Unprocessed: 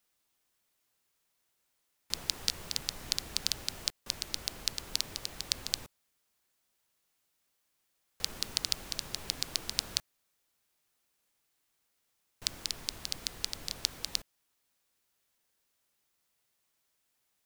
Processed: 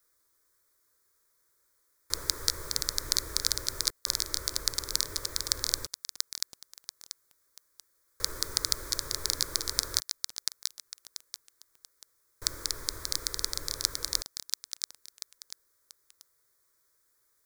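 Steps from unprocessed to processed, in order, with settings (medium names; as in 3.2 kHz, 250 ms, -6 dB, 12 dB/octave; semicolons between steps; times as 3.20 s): static phaser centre 760 Hz, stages 6; bit-crushed delay 686 ms, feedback 35%, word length 7-bit, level -3.5 dB; trim +7.5 dB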